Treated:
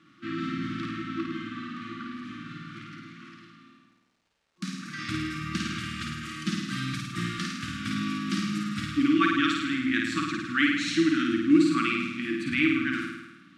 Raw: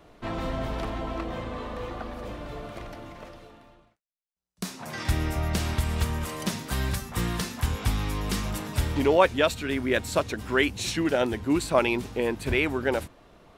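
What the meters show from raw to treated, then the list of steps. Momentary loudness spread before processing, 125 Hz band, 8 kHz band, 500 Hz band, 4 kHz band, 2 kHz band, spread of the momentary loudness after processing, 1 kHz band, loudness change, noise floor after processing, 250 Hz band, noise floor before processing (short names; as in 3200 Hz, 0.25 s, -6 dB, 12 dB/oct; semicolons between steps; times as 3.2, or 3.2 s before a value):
14 LU, -6.0 dB, -5.5 dB, under -10 dB, +0.5 dB, +2.0 dB, 17 LU, -2.5 dB, 0.0 dB, -63 dBFS, +4.5 dB, -64 dBFS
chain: HPF 150 Hz 24 dB/oct; FFT band-reject 350–1100 Hz; dynamic EQ 320 Hz, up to +7 dB, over -45 dBFS, Q 5; crackle 410/s -58 dBFS; air absorption 96 m; flutter echo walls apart 9.1 m, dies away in 1 s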